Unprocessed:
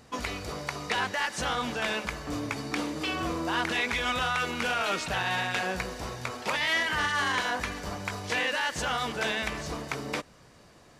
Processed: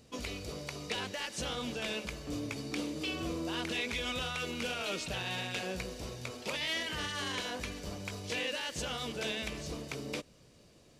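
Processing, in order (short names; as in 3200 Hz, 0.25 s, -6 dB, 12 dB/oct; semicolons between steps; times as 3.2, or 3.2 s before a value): band shelf 1200 Hz -9 dB; gain -4 dB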